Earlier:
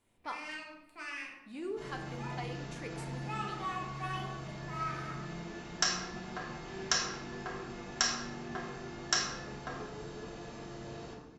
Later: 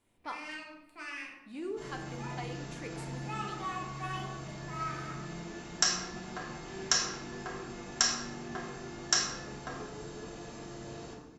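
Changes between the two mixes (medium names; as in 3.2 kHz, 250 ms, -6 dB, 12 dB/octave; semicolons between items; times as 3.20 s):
second sound: remove low-pass 5.4 kHz 12 dB/octave; master: add peaking EQ 300 Hz +2.5 dB 0.36 oct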